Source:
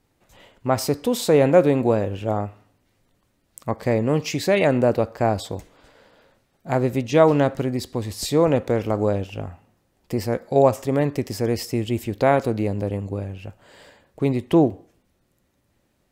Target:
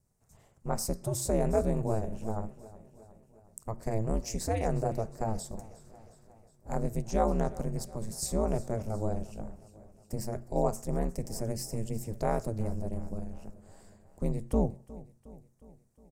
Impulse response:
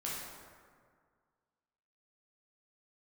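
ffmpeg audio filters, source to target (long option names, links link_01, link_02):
-af "bandreject=frequency=60:width_type=h:width=6,bandreject=frequency=120:width_type=h:width=6,bandreject=frequency=180:width_type=h:width=6,bandreject=frequency=240:width_type=h:width=6,aeval=exprs='val(0)*sin(2*PI*110*n/s)':channel_layout=same,firequalizer=gain_entry='entry(110,0);entry(300,-13);entry(580,-9);entry(3200,-22);entry(5500,-4);entry(8600,2);entry(12000,-4)':delay=0.05:min_phase=1,aecho=1:1:361|722|1083|1444|1805:0.112|0.0662|0.0391|0.023|0.0136"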